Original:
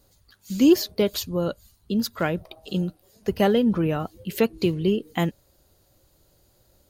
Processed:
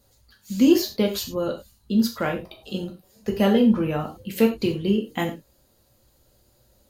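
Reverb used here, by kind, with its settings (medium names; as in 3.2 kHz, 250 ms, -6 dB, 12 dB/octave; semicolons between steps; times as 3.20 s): gated-style reverb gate 130 ms falling, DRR 1 dB; trim -2 dB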